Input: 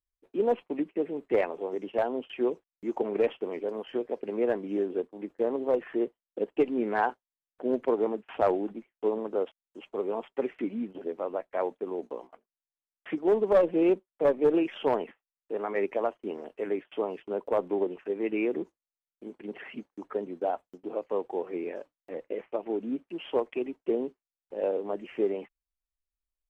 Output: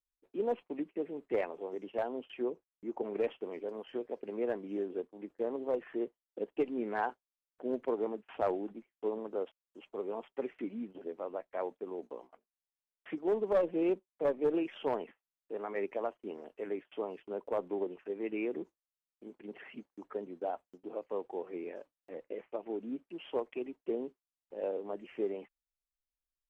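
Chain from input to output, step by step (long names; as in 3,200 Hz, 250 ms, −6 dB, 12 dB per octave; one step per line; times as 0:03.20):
0:02.42–0:03.03: high-shelf EQ 2,000 Hz −9 dB
level −7 dB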